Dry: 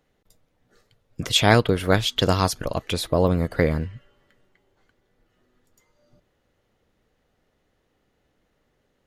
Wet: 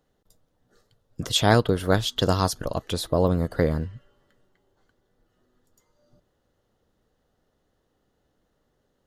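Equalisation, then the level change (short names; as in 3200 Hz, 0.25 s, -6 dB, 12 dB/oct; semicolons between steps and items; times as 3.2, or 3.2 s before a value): bell 2300 Hz -11 dB 0.49 oct; -1.5 dB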